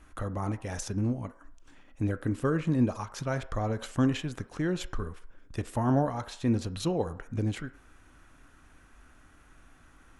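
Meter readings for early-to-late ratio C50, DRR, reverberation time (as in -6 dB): 16.0 dB, 11.0 dB, 0.60 s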